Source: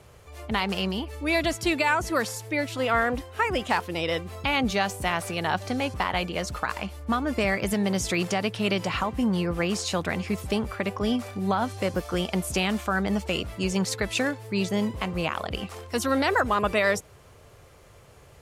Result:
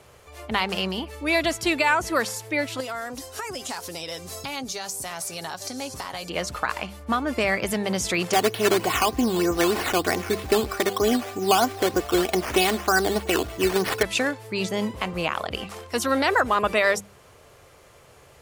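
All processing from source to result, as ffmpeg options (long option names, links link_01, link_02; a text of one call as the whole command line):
ffmpeg -i in.wav -filter_complex "[0:a]asettb=1/sr,asplit=3[link_01][link_02][link_03];[link_01]atrim=end=2.804[link_04];[link_02]atrim=start=2.8:end=6.3,asetpts=PTS-STARTPTS,afade=type=in:duration=0.004:curve=qsin,afade=type=out:start_time=3.496:duration=0.004:curve=qsin,highshelf=frequency=3900:width_type=q:width=1.5:gain=11.5,acompressor=threshold=-32dB:ratio=5:attack=3.2:release=140:knee=1:detection=peak,aecho=1:1:7.3:0.39,atrim=end_sample=154350[link_05];[link_03]atrim=start=6.296[link_06];[link_04][link_05]acrossfade=duration=0.004:curve1=hsin:curve2=qsin[link_07];[link_07][link_06]acrossfade=duration=0.004:curve1=qsin:curve2=hsin,asettb=1/sr,asplit=3[link_08][link_09][link_10];[link_08]atrim=end=8.334[link_11];[link_09]atrim=start=8.33:end=14.03,asetpts=PTS-STARTPTS,afade=type=in:duration=0.004:curve=qsin,afade=type=out:start_time=5.696:duration=0.004:curve=qsin,equalizer=frequency=330:width=0.41:gain=4.5,aecho=1:1:2.7:0.59,atrim=end_sample=251370,acrusher=samples=9:mix=1:aa=0.000001:lfo=1:lforange=5.4:lforate=3.2[link_12];[link_10]atrim=start=14.026[link_13];[link_11][link_12]acrossfade=duration=0.004:curve1=hsin:curve2=qsin[link_14];[link_14][link_13]acrossfade=duration=0.004:curve1=qsin:curve2=hsin,lowshelf=frequency=230:gain=-7,bandreject=frequency=50:width_type=h:width=6,bandreject=frequency=100:width_type=h:width=6,bandreject=frequency=150:width_type=h:width=6,bandreject=frequency=200:width_type=h:width=6,volume=3dB" out.wav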